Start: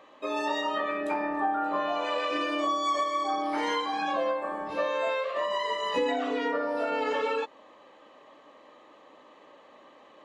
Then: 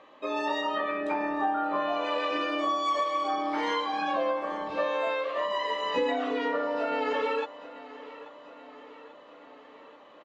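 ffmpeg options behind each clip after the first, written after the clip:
ffmpeg -i in.wav -af "lowpass=5400,aecho=1:1:836|1672|2508|3344|4180:0.133|0.0787|0.0464|0.0274|0.0162" out.wav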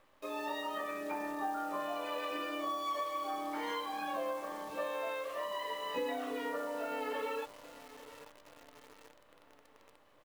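ffmpeg -i in.wav -af "acrusher=bits=8:dc=4:mix=0:aa=0.000001,volume=-9dB" out.wav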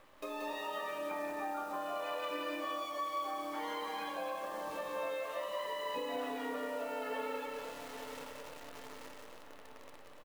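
ffmpeg -i in.wav -filter_complex "[0:a]acompressor=threshold=-48dB:ratio=2.5,asplit=2[link_01][link_02];[link_02]aecho=0:1:180|288|352.8|391.7|415:0.631|0.398|0.251|0.158|0.1[link_03];[link_01][link_03]amix=inputs=2:normalize=0,volume=5.5dB" out.wav

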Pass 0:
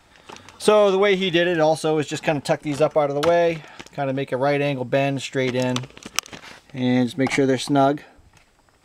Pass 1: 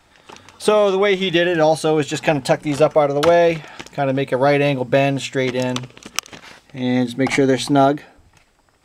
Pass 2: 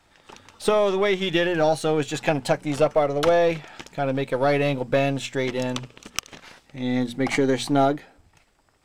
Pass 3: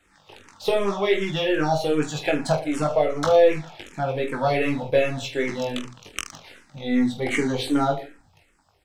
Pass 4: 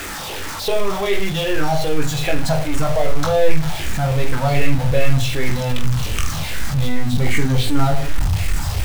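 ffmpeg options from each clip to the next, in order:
ffmpeg -i in.wav -af "bandreject=frequency=60:width_type=h:width=6,bandreject=frequency=120:width_type=h:width=6,bandreject=frequency=180:width_type=h:width=6,bandreject=frequency=240:width_type=h:width=6,dynaudnorm=framelen=150:gausssize=13:maxgain=7dB" out.wav
ffmpeg -i in.wav -af "aeval=exprs='if(lt(val(0),0),0.708*val(0),val(0))':channel_layout=same,volume=-4dB" out.wav
ffmpeg -i in.wav -filter_complex "[0:a]asplit=2[link_01][link_02];[link_02]aecho=0:1:20|45|76.25|115.3|164.1:0.631|0.398|0.251|0.158|0.1[link_03];[link_01][link_03]amix=inputs=2:normalize=0,asplit=2[link_04][link_05];[link_05]afreqshift=-2.6[link_06];[link_04][link_06]amix=inputs=2:normalize=1" out.wav
ffmpeg -i in.wav -af "aeval=exprs='val(0)+0.5*0.0708*sgn(val(0))':channel_layout=same,asubboost=boost=10.5:cutoff=110,bandreject=frequency=50:width_type=h:width=6,bandreject=frequency=100:width_type=h:width=6,bandreject=frequency=150:width_type=h:width=6,bandreject=frequency=200:width_type=h:width=6,bandreject=frequency=250:width_type=h:width=6" out.wav

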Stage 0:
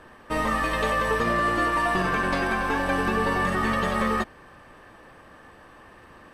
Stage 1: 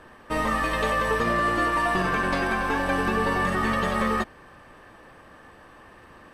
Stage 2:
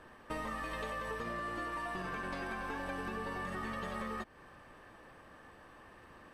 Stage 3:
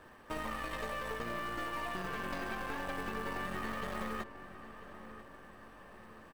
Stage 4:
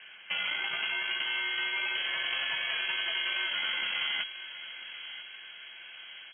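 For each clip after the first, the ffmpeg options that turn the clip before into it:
ffmpeg -i in.wav -af anull out.wav
ffmpeg -i in.wav -af "acompressor=threshold=-30dB:ratio=6,volume=-7dB" out.wav
ffmpeg -i in.wav -filter_complex "[0:a]acrusher=bits=5:mode=log:mix=0:aa=0.000001,aeval=exprs='(tanh(56.2*val(0)+0.8)-tanh(0.8))/56.2':channel_layout=same,asplit=2[link_01][link_02];[link_02]adelay=991,lowpass=frequency=2200:poles=1,volume=-13dB,asplit=2[link_03][link_04];[link_04]adelay=991,lowpass=frequency=2200:poles=1,volume=0.53,asplit=2[link_05][link_06];[link_06]adelay=991,lowpass=frequency=2200:poles=1,volume=0.53,asplit=2[link_07][link_08];[link_08]adelay=991,lowpass=frequency=2200:poles=1,volume=0.53,asplit=2[link_09][link_10];[link_10]adelay=991,lowpass=frequency=2200:poles=1,volume=0.53[link_11];[link_01][link_03][link_05][link_07][link_09][link_11]amix=inputs=6:normalize=0,volume=4.5dB" out.wav
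ffmpeg -i in.wav -af "lowpass=frequency=2800:width_type=q:width=0.5098,lowpass=frequency=2800:width_type=q:width=0.6013,lowpass=frequency=2800:width_type=q:width=0.9,lowpass=frequency=2800:width_type=q:width=2.563,afreqshift=-3300,volume=6.5dB" out.wav

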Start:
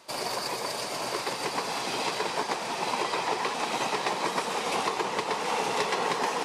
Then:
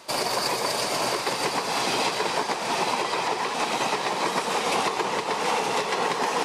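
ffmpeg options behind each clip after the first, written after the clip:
ffmpeg -i in.wav -af "alimiter=limit=-21dB:level=0:latency=1:release=236,volume=7dB" out.wav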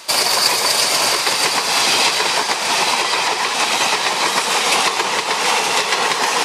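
ffmpeg -i in.wav -af "tiltshelf=frequency=1100:gain=-6.5,volume=7.5dB" out.wav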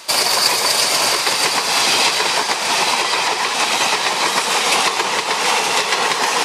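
ffmpeg -i in.wav -af anull out.wav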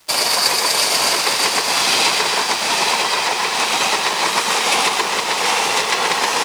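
ffmpeg -i in.wav -filter_complex "[0:a]aeval=exprs='sgn(val(0))*max(abs(val(0))-0.0188,0)':channel_layout=same,asplit=2[link_01][link_02];[link_02]aecho=0:1:126|656:0.531|0.355[link_03];[link_01][link_03]amix=inputs=2:normalize=0,volume=-1dB" out.wav

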